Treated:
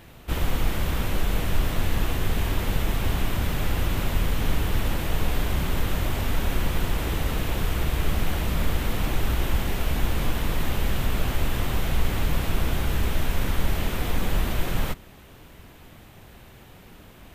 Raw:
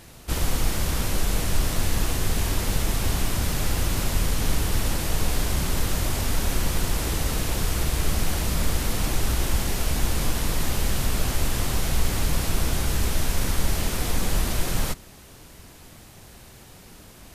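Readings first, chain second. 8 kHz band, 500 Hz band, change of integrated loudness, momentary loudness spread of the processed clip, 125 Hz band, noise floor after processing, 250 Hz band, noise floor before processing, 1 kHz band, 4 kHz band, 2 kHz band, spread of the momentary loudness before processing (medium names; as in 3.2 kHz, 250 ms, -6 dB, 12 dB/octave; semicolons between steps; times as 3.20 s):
-10.0 dB, 0.0 dB, -1.5 dB, 1 LU, 0.0 dB, -48 dBFS, 0.0 dB, -47 dBFS, 0.0 dB, -3.5 dB, 0.0 dB, 1 LU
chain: high-order bell 7.2 kHz -10 dB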